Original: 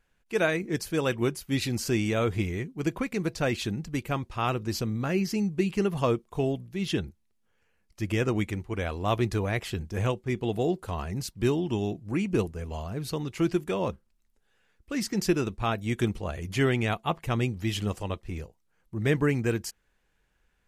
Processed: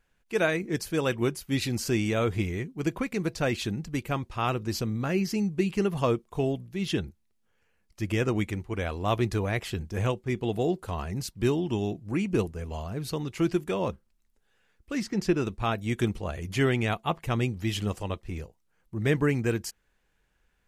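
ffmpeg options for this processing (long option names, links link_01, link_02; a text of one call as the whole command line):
ffmpeg -i in.wav -filter_complex "[0:a]asplit=3[link_01][link_02][link_03];[link_01]afade=type=out:start_time=15:duration=0.02[link_04];[link_02]aemphasis=mode=reproduction:type=50kf,afade=type=in:start_time=15:duration=0.02,afade=type=out:start_time=15.4:duration=0.02[link_05];[link_03]afade=type=in:start_time=15.4:duration=0.02[link_06];[link_04][link_05][link_06]amix=inputs=3:normalize=0" out.wav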